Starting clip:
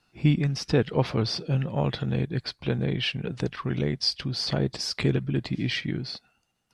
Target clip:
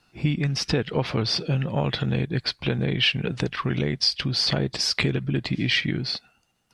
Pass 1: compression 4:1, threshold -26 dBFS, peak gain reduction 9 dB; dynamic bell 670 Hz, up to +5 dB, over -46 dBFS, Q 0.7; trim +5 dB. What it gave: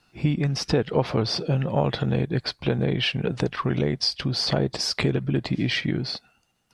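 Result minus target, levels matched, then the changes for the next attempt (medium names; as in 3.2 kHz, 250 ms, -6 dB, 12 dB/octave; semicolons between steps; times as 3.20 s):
500 Hz band +4.0 dB
change: dynamic bell 2.6 kHz, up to +5 dB, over -46 dBFS, Q 0.7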